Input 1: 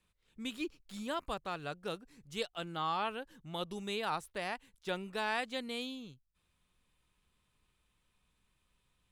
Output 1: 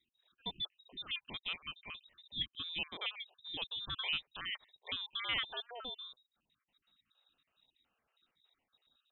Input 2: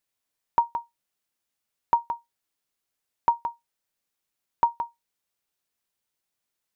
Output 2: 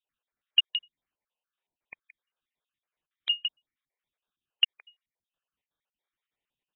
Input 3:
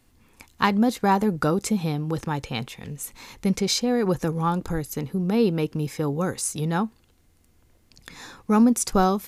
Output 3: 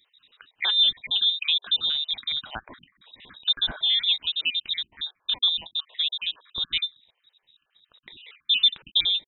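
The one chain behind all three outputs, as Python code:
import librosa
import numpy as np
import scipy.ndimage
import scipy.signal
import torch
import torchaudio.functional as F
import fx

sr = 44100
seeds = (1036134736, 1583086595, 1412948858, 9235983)

y = fx.spec_dropout(x, sr, seeds[0], share_pct=51)
y = fx.wow_flutter(y, sr, seeds[1], rate_hz=2.1, depth_cents=26.0)
y = fx.freq_invert(y, sr, carrier_hz=3800)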